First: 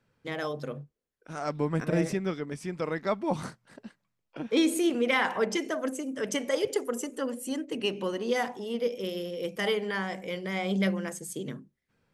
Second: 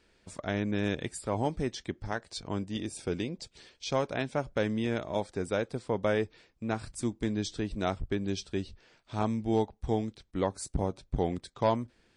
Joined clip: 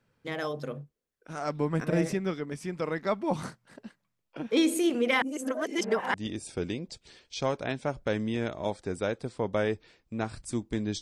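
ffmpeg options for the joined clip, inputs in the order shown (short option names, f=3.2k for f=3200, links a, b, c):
-filter_complex "[0:a]apad=whole_dur=11.01,atrim=end=11.01,asplit=2[a][b];[a]atrim=end=5.222[c];[b]atrim=start=5.218:end=6.142,asetpts=PTS-STARTPTS,areverse[d];[1:a]atrim=start=2.638:end=7.51[e];[c][d]acrossfade=d=0.004:c1=hsin:c2=hsin[f];[f][e]acrossfade=d=0.004:c1=hsin:c2=hsin"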